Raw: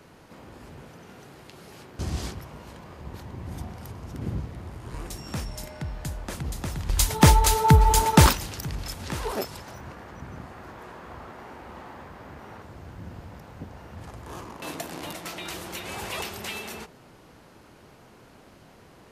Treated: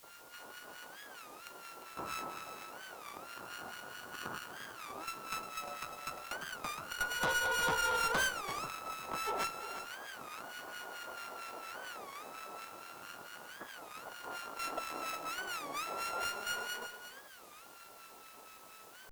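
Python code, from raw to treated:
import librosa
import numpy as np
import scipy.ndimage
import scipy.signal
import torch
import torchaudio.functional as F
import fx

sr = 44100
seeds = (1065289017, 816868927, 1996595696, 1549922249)

p1 = np.r_[np.sort(x[:len(x) // 32 * 32].reshape(-1, 32), axis=1).ravel(), x[len(x) // 32 * 32:]]
p2 = scipy.signal.sosfilt(scipy.signal.butter(2, 730.0, 'highpass', fs=sr, output='sos'), p1)
p3 = fx.high_shelf(p2, sr, hz=2800.0, db=-11.5)
p4 = fx.rider(p3, sr, range_db=3, speed_s=0.5)
p5 = p3 + (p4 * 10.0 ** (-1.0 / 20.0))
p6 = fx.harmonic_tremolo(p5, sr, hz=4.4, depth_pct=100, crossover_hz=1200.0)
p7 = fx.vibrato(p6, sr, rate_hz=0.31, depth_cents=95.0)
p8 = fx.quant_dither(p7, sr, seeds[0], bits=10, dither='triangular')
p9 = fx.tube_stage(p8, sr, drive_db=30.0, bias=0.3)
p10 = p9 + fx.echo_single(p9, sr, ms=353, db=-10.5, dry=0)
p11 = fx.record_warp(p10, sr, rpm=33.33, depth_cents=250.0)
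y = p11 * 10.0 ** (1.0 / 20.0)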